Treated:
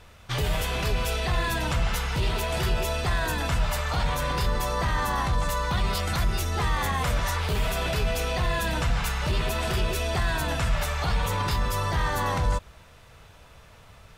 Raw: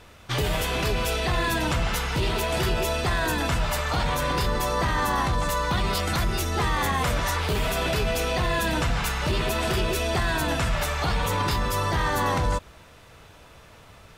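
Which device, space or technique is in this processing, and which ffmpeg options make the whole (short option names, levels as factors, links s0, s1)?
low shelf boost with a cut just above: -af "lowshelf=f=88:g=5.5,equalizer=f=310:t=o:w=0.76:g=-5,volume=0.75"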